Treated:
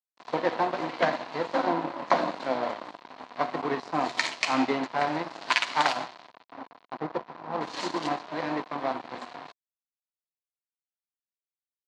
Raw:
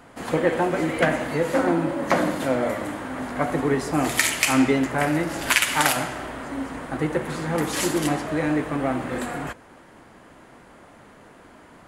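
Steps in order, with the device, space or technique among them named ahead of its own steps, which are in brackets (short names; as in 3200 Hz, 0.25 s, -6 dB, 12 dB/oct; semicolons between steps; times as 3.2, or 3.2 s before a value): 6.32–7.6 LPF 2000 Hz -> 1200 Hz 24 dB/oct; blown loudspeaker (crossover distortion -28 dBFS; speaker cabinet 190–5800 Hz, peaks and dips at 710 Hz +7 dB, 1000 Hz +10 dB, 4200 Hz +7 dB); gain -5 dB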